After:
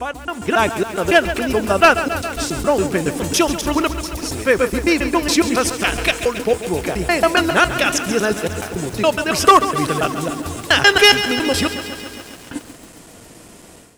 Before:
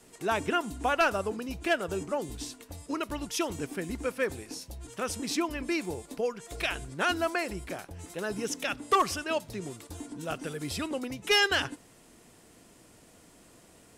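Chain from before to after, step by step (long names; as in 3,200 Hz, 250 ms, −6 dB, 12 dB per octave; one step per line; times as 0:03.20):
slices reordered back to front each 139 ms, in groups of 7
automatic gain control gain up to 13.5 dB
feedback echo at a low word length 137 ms, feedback 80%, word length 6 bits, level −11.5 dB
level +1.5 dB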